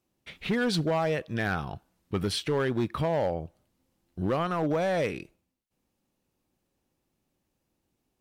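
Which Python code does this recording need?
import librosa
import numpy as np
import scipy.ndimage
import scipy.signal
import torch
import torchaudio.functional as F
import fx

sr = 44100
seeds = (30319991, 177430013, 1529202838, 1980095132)

y = fx.fix_declip(x, sr, threshold_db=-21.0)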